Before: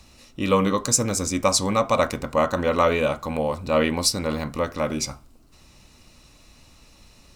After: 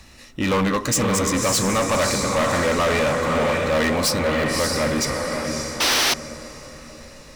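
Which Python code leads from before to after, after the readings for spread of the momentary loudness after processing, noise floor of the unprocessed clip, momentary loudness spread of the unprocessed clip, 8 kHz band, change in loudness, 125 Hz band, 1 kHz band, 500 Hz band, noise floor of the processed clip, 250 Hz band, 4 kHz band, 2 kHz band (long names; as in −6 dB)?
10 LU, −53 dBFS, 7 LU, +2.5 dB, +2.5 dB, +3.0 dB, +2.0 dB, +2.0 dB, −44 dBFS, +2.5 dB, +6.0 dB, +8.0 dB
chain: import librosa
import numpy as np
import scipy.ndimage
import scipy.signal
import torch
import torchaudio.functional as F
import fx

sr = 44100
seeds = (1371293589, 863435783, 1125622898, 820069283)

y = fx.peak_eq(x, sr, hz=1800.0, db=10.0, octaves=0.36)
y = fx.echo_diffused(y, sr, ms=580, feedback_pct=46, wet_db=-5)
y = fx.spec_paint(y, sr, seeds[0], shape='noise', start_s=5.8, length_s=0.34, low_hz=230.0, high_hz=6300.0, level_db=-17.0)
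y = np.clip(y, -10.0 ** (-21.0 / 20.0), 10.0 ** (-21.0 / 20.0))
y = y * 10.0 ** (4.0 / 20.0)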